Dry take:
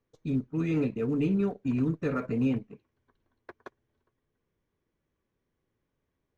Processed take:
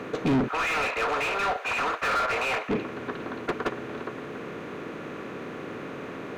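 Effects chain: spectral levelling over time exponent 0.6; 0.48–2.69 s: high-pass 730 Hz 24 dB/octave; overdrive pedal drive 33 dB, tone 1.9 kHz, clips at -18 dBFS; trim +1.5 dB

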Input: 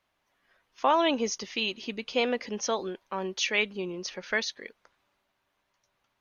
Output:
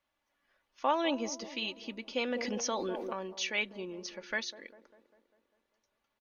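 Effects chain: comb 3.5 ms, depth 40%; feedback echo behind a band-pass 199 ms, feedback 56%, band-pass 440 Hz, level -12.5 dB; 2.31–3.13 s: level flattener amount 70%; trim -7 dB

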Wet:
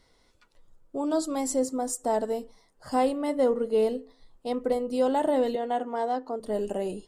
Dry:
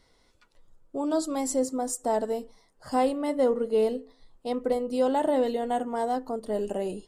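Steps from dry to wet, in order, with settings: 5.55–6.40 s: three-band isolator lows -21 dB, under 210 Hz, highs -18 dB, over 6.1 kHz

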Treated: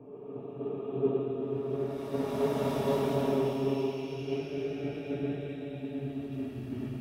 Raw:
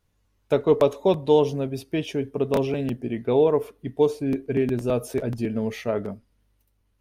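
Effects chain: comb of notches 510 Hz; Paulstretch 12×, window 0.25 s, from 2.32 s; three bands expanded up and down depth 100%; trim -6.5 dB

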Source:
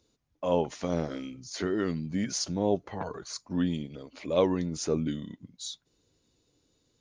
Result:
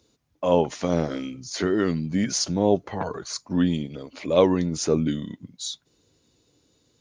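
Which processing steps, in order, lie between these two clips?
high-pass 59 Hz; trim +6.5 dB

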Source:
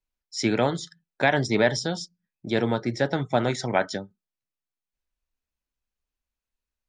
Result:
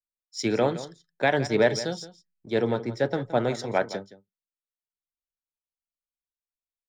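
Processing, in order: peaking EQ 460 Hz +6 dB 0.66 oct; in parallel at -10 dB: hysteresis with a dead band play -31.5 dBFS; on the sum: echo from a far wall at 29 m, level -13 dB; three bands expanded up and down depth 40%; trim -6 dB

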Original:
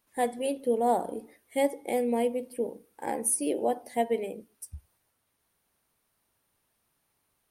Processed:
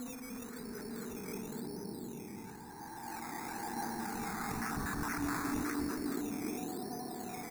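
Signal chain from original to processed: slow attack 109 ms; Bessel low-pass 8.3 kHz; compression, threshold -41 dBFS, peak gain reduction 19.5 dB; Paulstretch 5.4×, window 0.50 s, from 2.40 s; frequency-shifting echo 293 ms, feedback 46%, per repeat -40 Hz, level -8 dB; decimation with a swept rate 12×, swing 60% 0.97 Hz; static phaser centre 1.3 kHz, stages 4; decay stretcher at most 28 dB/s; trim +9.5 dB

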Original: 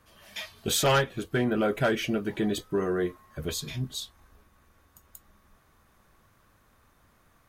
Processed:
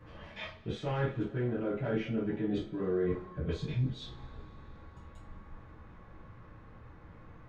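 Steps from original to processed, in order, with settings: reverse; compression 16:1, threshold -40 dBFS, peak gain reduction 20.5 dB; reverse; tape spacing loss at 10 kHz 41 dB; reverberation, pre-delay 3 ms, DRR -7 dB; trim +4.5 dB

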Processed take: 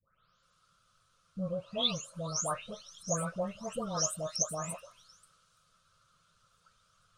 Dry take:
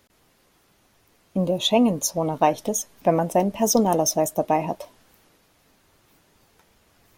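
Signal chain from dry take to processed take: delay that grows with frequency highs late, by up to 432 ms; FFT filter 170 Hz 0 dB, 240 Hz -15 dB, 380 Hz -18 dB, 550 Hz -1 dB, 830 Hz -15 dB, 1.3 kHz +14 dB, 1.9 kHz -9 dB, 3.4 kHz +4 dB, 9 kHz +2 dB, 13 kHz -19 dB; trim -9 dB

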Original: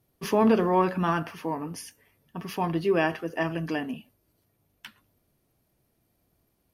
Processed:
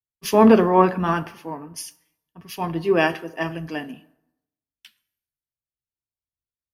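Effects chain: plate-style reverb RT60 1.9 s, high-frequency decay 0.45×, DRR 15.5 dB; three bands expanded up and down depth 100%; trim +2.5 dB

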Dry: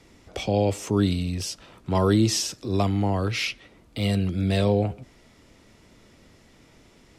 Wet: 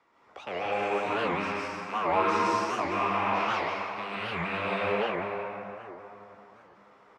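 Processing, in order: rattle on loud lows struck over -30 dBFS, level -16 dBFS; band-pass filter 1.1 kHz, Q 2.8; doubling 15 ms -11 dB; plate-style reverb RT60 3.5 s, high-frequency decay 0.5×, pre-delay 115 ms, DRR -8.5 dB; warped record 78 rpm, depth 250 cents

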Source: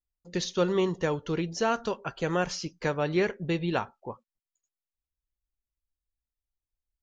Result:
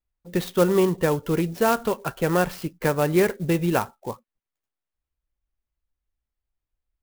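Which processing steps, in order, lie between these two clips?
distance through air 230 m; sampling jitter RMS 0.037 ms; trim +7 dB

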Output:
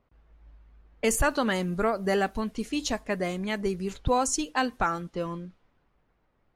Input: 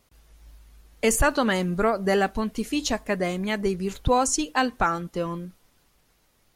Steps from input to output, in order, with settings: level-controlled noise filter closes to 1.6 kHz, open at -22 dBFS; trim -3.5 dB

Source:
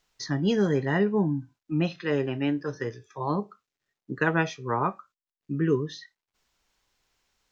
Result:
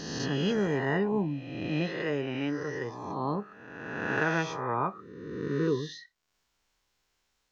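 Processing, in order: reverse spectral sustain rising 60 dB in 1.50 s; trim -6 dB

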